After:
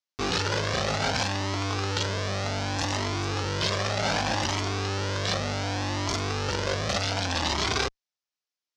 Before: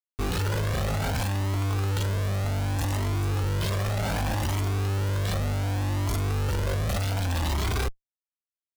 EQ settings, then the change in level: high-pass 330 Hz 6 dB/octave; distance through air 140 m; peaking EQ 5.6 kHz +12.5 dB 1.2 oct; +5.0 dB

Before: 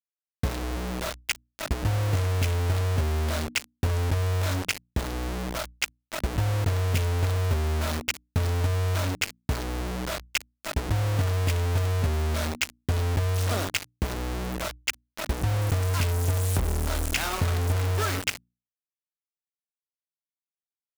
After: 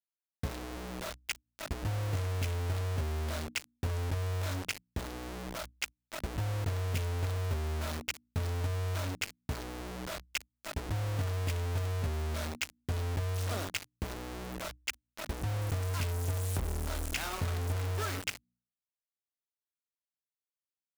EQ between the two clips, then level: hum notches 60/120/180/240 Hz; -8.0 dB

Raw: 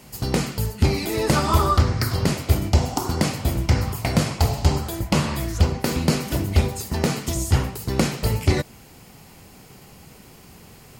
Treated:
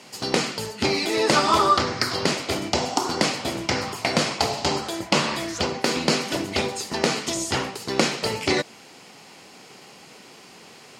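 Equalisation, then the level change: band-pass 290–4900 Hz; treble shelf 3.6 kHz +9 dB; +2.5 dB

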